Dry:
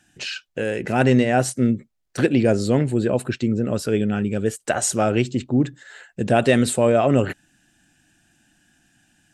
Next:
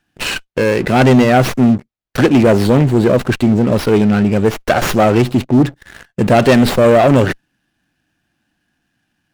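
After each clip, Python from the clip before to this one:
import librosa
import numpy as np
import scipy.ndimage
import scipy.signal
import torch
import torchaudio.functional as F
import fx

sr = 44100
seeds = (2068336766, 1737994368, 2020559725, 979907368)

y = fx.leveller(x, sr, passes=3)
y = fx.running_max(y, sr, window=5)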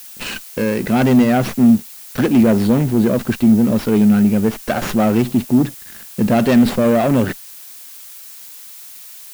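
y = fx.peak_eq(x, sr, hz=220.0, db=9.5, octaves=0.48)
y = fx.dmg_noise_colour(y, sr, seeds[0], colour='blue', level_db=-30.0)
y = F.gain(torch.from_numpy(y), -7.0).numpy()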